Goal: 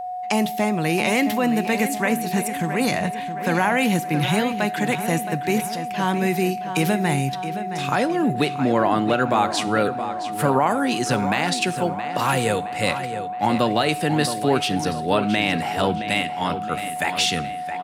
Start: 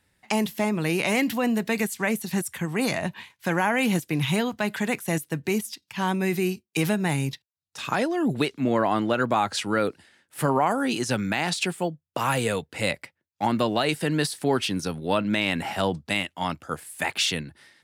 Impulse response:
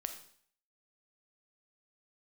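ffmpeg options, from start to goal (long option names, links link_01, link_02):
-filter_complex "[0:a]asplit=2[link_01][link_02];[link_02]adelay=669,lowpass=frequency=4600:poles=1,volume=-10dB,asplit=2[link_03][link_04];[link_04]adelay=669,lowpass=frequency=4600:poles=1,volume=0.52,asplit=2[link_05][link_06];[link_06]adelay=669,lowpass=frequency=4600:poles=1,volume=0.52,asplit=2[link_07][link_08];[link_08]adelay=669,lowpass=frequency=4600:poles=1,volume=0.52,asplit=2[link_09][link_10];[link_10]adelay=669,lowpass=frequency=4600:poles=1,volume=0.52,asplit=2[link_11][link_12];[link_12]adelay=669,lowpass=frequency=4600:poles=1,volume=0.52[link_13];[link_01][link_03][link_05][link_07][link_09][link_11][link_13]amix=inputs=7:normalize=0,aeval=exprs='val(0)+0.0282*sin(2*PI*730*n/s)':channel_layout=same,asplit=2[link_14][link_15];[1:a]atrim=start_sample=2205[link_16];[link_15][link_16]afir=irnorm=-1:irlink=0,volume=-6dB[link_17];[link_14][link_17]amix=inputs=2:normalize=0"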